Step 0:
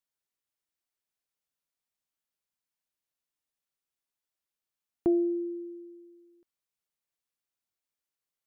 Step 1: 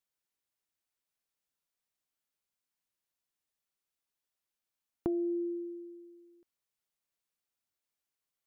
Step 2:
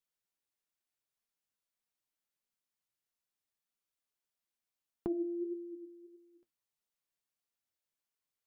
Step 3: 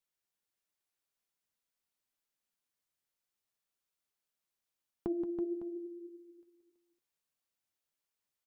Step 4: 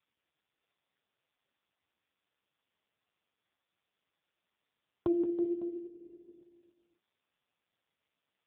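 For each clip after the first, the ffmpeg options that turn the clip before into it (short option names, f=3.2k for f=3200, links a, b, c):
-af "acompressor=threshold=-30dB:ratio=6"
-af "flanger=delay=4.2:depth=6.1:regen=60:speed=1.6:shape=sinusoidal,volume=1dB"
-af "aecho=1:1:176|328|556:0.355|0.422|0.188"
-af "volume=7dB" -ar 8000 -c:a libopencore_amrnb -b:a 5150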